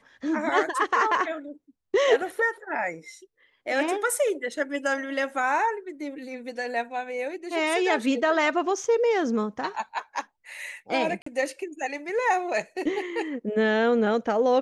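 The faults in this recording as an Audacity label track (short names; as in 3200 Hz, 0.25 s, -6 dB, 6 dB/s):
11.220000	11.260000	gap 44 ms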